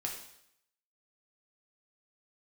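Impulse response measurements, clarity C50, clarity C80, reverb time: 5.5 dB, 8.5 dB, 0.75 s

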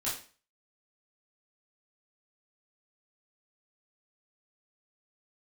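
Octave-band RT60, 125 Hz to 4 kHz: 0.35, 0.40, 0.40, 0.40, 0.40, 0.35 seconds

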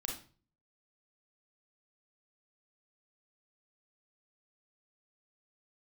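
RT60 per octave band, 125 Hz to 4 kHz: 0.65, 0.55, 0.45, 0.35, 0.35, 0.35 seconds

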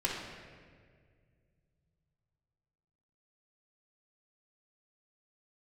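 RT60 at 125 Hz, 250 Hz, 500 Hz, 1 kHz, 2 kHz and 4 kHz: 4.0, 2.6, 2.2, 1.6, 1.7, 1.3 seconds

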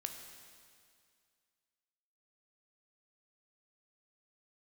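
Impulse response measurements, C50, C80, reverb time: 6.0 dB, 7.0 dB, 2.2 s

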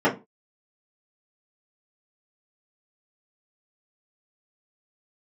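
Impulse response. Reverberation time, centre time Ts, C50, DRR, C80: 0.25 s, 19 ms, 13.5 dB, −9.0 dB, 20.0 dB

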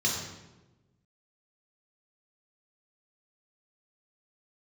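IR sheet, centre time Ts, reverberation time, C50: 54 ms, 1.1 s, 2.5 dB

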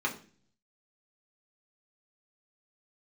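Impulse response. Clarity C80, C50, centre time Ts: 16.5 dB, 12.5 dB, 13 ms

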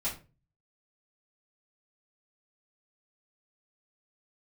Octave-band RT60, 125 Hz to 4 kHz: 0.65, 0.45, 0.35, 0.30, 0.30, 0.25 seconds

